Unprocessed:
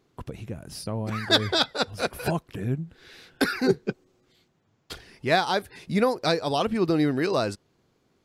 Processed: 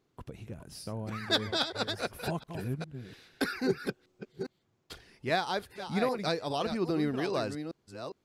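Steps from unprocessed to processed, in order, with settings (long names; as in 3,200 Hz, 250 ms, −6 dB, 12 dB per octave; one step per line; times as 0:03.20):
delay that plays each chunk backwards 406 ms, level −8.5 dB
level −7.5 dB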